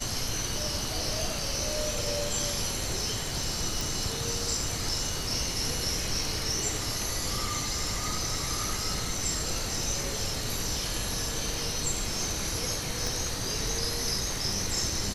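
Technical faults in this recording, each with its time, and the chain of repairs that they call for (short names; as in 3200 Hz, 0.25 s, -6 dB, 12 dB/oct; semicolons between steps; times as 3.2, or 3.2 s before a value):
3.81 pop
13.07 pop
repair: de-click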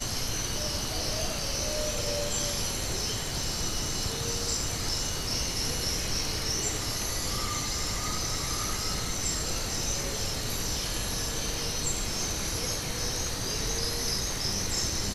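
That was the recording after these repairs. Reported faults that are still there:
13.07 pop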